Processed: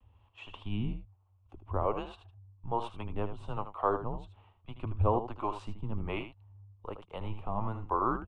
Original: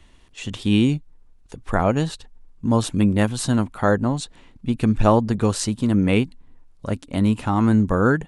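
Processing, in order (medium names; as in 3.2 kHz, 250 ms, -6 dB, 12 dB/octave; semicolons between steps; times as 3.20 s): FFT filter 110 Hz 0 dB, 170 Hz -7 dB, 240 Hz -9 dB, 420 Hz -1 dB, 810 Hz +4 dB, 1.2 kHz +9 dB, 1.8 kHz -11 dB, 3 kHz -1 dB, 4.5 kHz -18 dB, 6.8 kHz -25 dB; frequency shift -110 Hz; vibrato 0.48 Hz 24 cents; harmonic tremolo 1.2 Hz, depth 70%, crossover 420 Hz; on a send: delay 78 ms -10 dB; on the sum: trim -9 dB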